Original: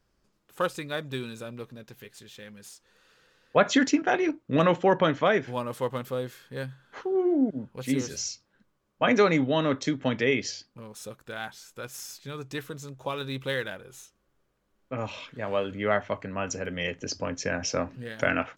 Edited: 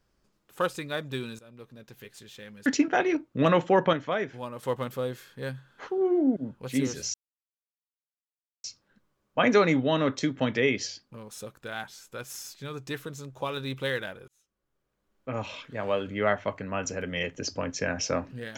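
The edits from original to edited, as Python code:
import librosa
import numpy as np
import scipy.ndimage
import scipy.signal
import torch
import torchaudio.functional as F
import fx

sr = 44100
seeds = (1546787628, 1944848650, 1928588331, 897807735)

y = fx.edit(x, sr, fx.fade_in_from(start_s=1.39, length_s=0.66, floor_db=-18.5),
    fx.cut(start_s=2.66, length_s=1.14),
    fx.clip_gain(start_s=5.07, length_s=0.7, db=-6.0),
    fx.insert_silence(at_s=8.28, length_s=1.5),
    fx.fade_in_span(start_s=13.92, length_s=1.09), tone=tone)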